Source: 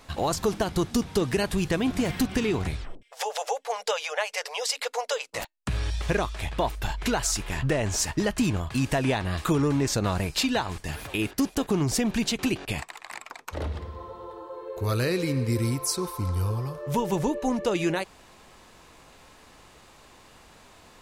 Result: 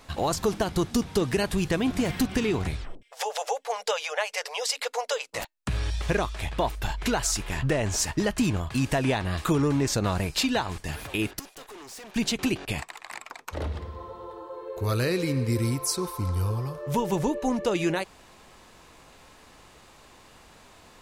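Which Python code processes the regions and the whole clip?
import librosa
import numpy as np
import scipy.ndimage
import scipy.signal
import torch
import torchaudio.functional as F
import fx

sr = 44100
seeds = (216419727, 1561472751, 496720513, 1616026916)

y = fx.chain(x, sr, fx.highpass(hz=610.0, slope=12),
    fx.tube_stage(drive_db=41.0, bias=0.65), at=(11.39, 12.16))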